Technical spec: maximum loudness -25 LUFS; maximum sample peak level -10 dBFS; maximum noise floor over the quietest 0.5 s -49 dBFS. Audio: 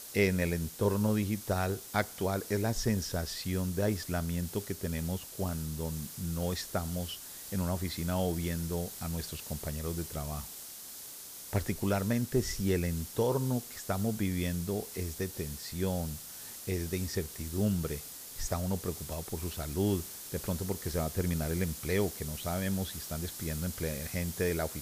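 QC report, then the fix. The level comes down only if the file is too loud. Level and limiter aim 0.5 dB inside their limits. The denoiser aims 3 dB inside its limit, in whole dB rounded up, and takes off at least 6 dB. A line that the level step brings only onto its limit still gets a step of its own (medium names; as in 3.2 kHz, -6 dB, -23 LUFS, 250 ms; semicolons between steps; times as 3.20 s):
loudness -34.0 LUFS: pass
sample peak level -14.5 dBFS: pass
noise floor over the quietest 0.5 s -46 dBFS: fail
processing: noise reduction 6 dB, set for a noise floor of -46 dBFS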